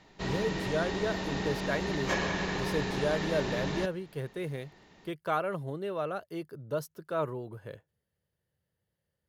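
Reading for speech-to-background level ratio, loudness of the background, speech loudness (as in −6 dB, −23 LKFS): −1.5 dB, −33.5 LKFS, −35.0 LKFS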